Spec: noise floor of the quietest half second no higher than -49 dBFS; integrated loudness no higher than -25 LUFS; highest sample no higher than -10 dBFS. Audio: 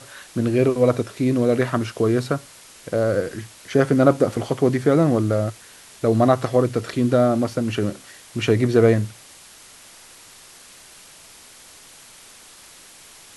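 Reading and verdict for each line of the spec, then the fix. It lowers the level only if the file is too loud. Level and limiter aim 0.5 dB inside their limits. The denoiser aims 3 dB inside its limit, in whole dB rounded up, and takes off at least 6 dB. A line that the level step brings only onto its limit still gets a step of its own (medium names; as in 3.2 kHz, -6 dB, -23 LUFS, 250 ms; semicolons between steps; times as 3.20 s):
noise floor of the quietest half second -46 dBFS: fail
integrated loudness -20.5 LUFS: fail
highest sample -2.5 dBFS: fail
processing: trim -5 dB; peak limiter -10.5 dBFS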